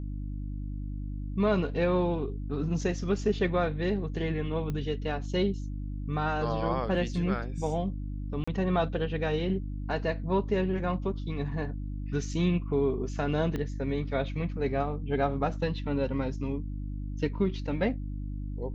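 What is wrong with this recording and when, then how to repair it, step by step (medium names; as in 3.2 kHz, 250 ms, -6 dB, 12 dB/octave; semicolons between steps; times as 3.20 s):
hum 50 Hz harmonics 6 -35 dBFS
4.70 s: pop -22 dBFS
8.44–8.47 s: dropout 35 ms
13.56 s: pop -21 dBFS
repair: de-click; de-hum 50 Hz, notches 6; interpolate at 8.44 s, 35 ms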